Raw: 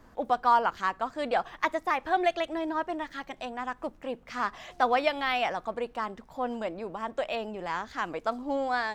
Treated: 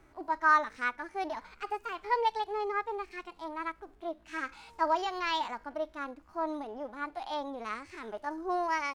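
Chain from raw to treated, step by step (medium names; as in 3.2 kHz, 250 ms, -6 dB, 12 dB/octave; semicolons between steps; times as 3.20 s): pitch shift +4.5 st; harmonic-percussive split percussive -15 dB; trim -1.5 dB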